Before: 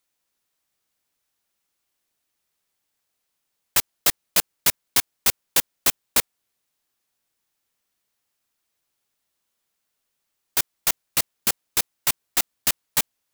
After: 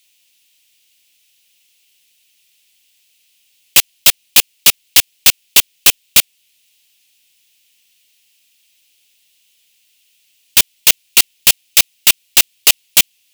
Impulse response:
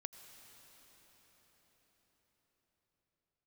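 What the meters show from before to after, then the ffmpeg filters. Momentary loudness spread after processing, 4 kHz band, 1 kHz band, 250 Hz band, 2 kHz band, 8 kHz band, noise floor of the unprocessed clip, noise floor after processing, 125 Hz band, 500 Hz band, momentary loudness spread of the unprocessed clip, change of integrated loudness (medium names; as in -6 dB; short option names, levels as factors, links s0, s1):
3 LU, +14.0 dB, +4.0 dB, +4.0 dB, +11.5 dB, +11.0 dB, -78 dBFS, -60 dBFS, +4.5 dB, +4.5 dB, 5 LU, +11.0 dB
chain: -filter_complex "[0:a]highshelf=f=1900:t=q:w=3:g=12.5,asplit=2[s0][s1];[s1]alimiter=limit=0.944:level=0:latency=1:release=476,volume=0.75[s2];[s0][s2]amix=inputs=2:normalize=0,volume=1.88,asoftclip=hard,volume=0.531,volume=1.19"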